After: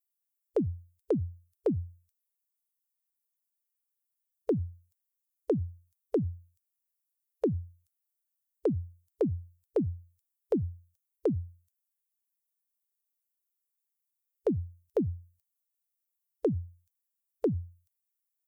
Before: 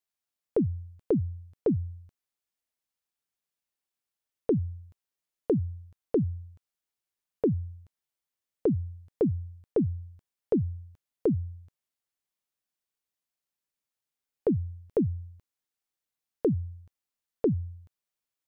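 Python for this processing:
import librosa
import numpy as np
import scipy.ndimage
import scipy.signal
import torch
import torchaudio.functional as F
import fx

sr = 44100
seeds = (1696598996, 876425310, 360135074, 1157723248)

p1 = fx.bin_expand(x, sr, power=2.0)
p2 = fx.over_compress(p1, sr, threshold_db=-31.0, ratio=-1.0)
p3 = p1 + F.gain(torch.from_numpy(p2), 1.5).numpy()
p4 = fx.bass_treble(p3, sr, bass_db=-7, treble_db=11)
y = F.gain(torch.from_numpy(p4), -2.0).numpy()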